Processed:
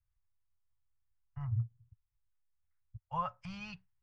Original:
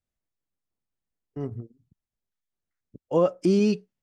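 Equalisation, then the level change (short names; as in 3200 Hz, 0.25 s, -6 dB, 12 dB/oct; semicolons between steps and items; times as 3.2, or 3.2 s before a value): Chebyshev band-stop 110–930 Hz, order 3; LPF 2100 Hz 12 dB/oct; low shelf 250 Hz +11 dB; -1.5 dB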